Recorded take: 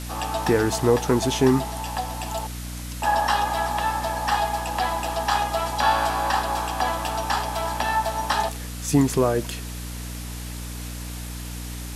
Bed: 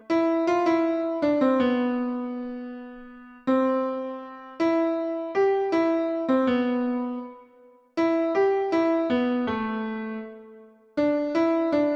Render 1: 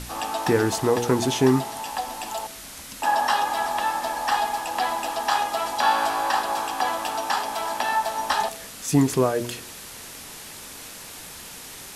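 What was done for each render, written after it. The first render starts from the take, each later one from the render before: de-hum 60 Hz, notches 11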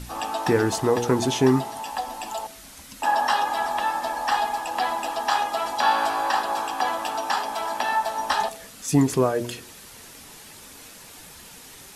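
denoiser 6 dB, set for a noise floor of -40 dBFS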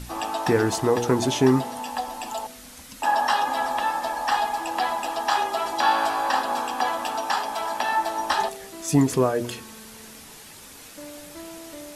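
add bed -18.5 dB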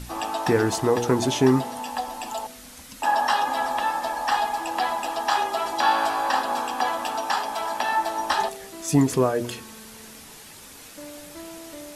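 nothing audible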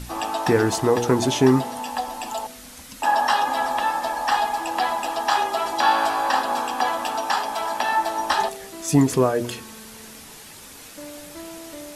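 gain +2 dB

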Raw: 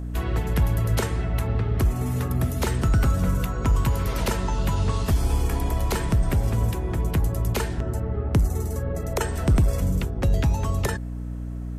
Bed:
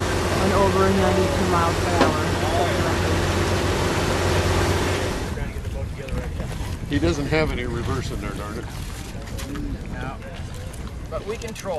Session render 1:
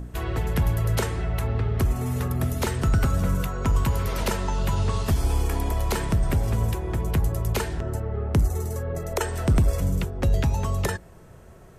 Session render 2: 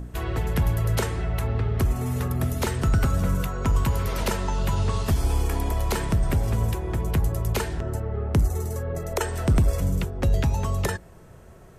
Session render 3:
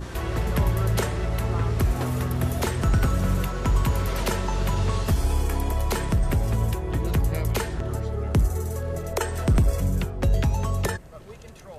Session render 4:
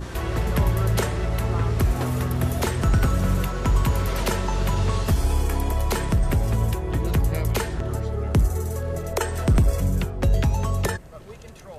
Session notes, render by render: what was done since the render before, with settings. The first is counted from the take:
de-hum 60 Hz, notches 5
nothing audible
add bed -16 dB
gain +1.5 dB

